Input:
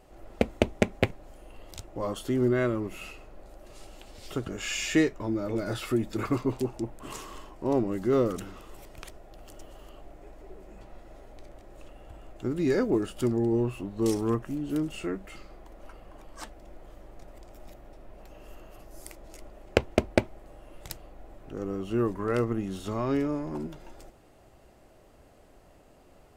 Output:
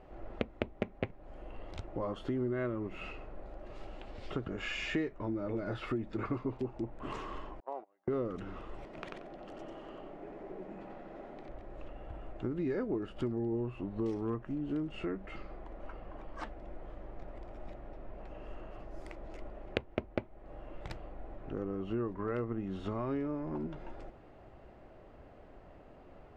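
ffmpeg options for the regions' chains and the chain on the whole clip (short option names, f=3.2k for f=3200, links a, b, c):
-filter_complex "[0:a]asettb=1/sr,asplit=3[a][b][c];[a]atrim=end=7.604[d];[b]atrim=start=7.6:end=8.08,asetpts=PTS-STARTPTS,afade=t=in:d=0.004:c=qsin,afade=t=out:st=0.476:d=0.004:c=qsin,agate=range=-38dB:threshold=-25dB:ratio=16:release=100:detection=peak,acompressor=threshold=-36dB:ratio=5:attack=3.2:release=140:knee=1:detection=peak,highpass=f=730:t=q:w=2.4[e];[c]atrim=start=8.076[f];[d][e]acrossfade=d=0.004:c1=hsin:c2=qsin[g];[g][f]acrossfade=d=0.004:c1=qsin:c2=hsin,asettb=1/sr,asplit=3[h][i][j];[h]atrim=end=8.844[k];[i]atrim=start=8.84:end=11.49,asetpts=PTS-STARTPTS,afade=t=in:d=0.004:c=qsin,afade=t=out:st=2.646:d=0.004:c=qsin,lowshelf=f=120:t=q:w=1.5:g=-13,aecho=1:1:91|182|273:0.708|0.17|0.0408,atrim=end_sample=116865[l];[j]atrim=start=11.486[m];[k][l]acrossfade=d=0.004:c1=hsin:c2=qsin[n];[n][m]acrossfade=d=0.004:c1=qsin:c2=hsin,lowpass=2.3k,acompressor=threshold=-37dB:ratio=3,volume=2dB"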